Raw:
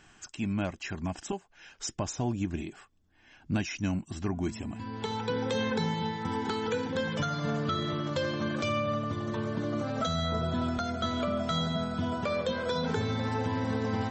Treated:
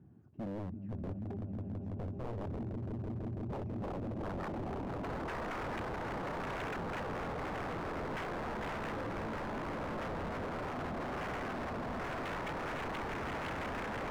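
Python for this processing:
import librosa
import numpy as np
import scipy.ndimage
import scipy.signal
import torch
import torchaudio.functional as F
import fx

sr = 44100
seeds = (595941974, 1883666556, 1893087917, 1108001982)

p1 = x + 0.5 * 10.0 ** (-47.0 / 20.0) * np.sign(x)
p2 = scipy.signal.sosfilt(scipy.signal.butter(4, 84.0, 'highpass', fs=sr, output='sos'), p1)
p3 = p2 + fx.echo_swell(p2, sr, ms=165, loudest=5, wet_db=-8.0, dry=0)
p4 = fx.dynamic_eq(p3, sr, hz=160.0, q=2.4, threshold_db=-43.0, ratio=4.0, max_db=-5)
p5 = fx.filter_sweep_lowpass(p4, sr, from_hz=220.0, to_hz=550.0, start_s=3.58, end_s=4.65, q=0.74)
y = 10.0 ** (-34.0 / 20.0) * (np.abs((p5 / 10.0 ** (-34.0 / 20.0) + 3.0) % 4.0 - 2.0) - 1.0)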